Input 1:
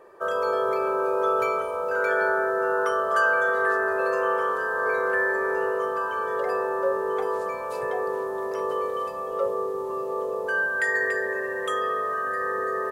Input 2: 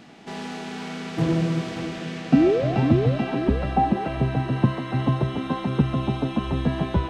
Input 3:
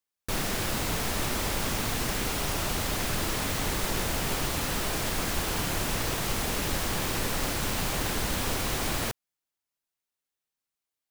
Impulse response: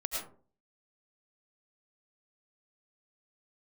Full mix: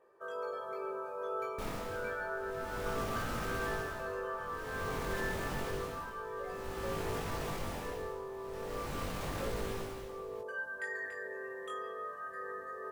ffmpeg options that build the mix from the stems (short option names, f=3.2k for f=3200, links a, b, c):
-filter_complex "[0:a]volume=-12.5dB[a];[2:a]highshelf=f=2.4k:g=-10,tremolo=f=0.5:d=0.91,adelay=1300,volume=-2dB,alimiter=level_in=3dB:limit=-24dB:level=0:latency=1:release=12,volume=-3dB,volume=0dB[b];[a][b]amix=inputs=2:normalize=0,flanger=delay=17.5:depth=5.7:speed=0.3"